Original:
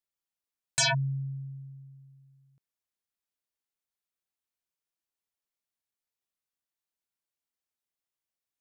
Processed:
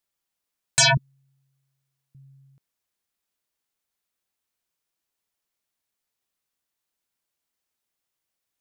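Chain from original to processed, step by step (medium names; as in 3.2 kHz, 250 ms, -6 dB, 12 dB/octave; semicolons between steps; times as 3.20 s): 0.97–2.15 s: steep high-pass 240 Hz 48 dB/octave; trim +8 dB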